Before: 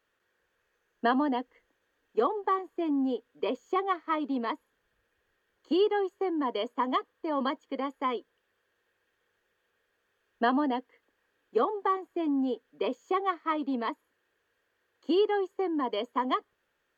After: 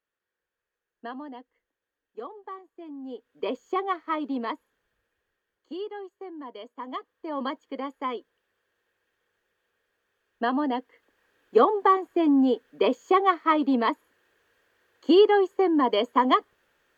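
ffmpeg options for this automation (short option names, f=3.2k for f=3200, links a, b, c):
-af "volume=19dB,afade=t=in:st=3.02:d=0.45:silence=0.223872,afade=t=out:st=4.49:d=1.24:silence=0.281838,afade=t=in:st=6.76:d=0.73:silence=0.334965,afade=t=in:st=10.46:d=1.13:silence=0.375837"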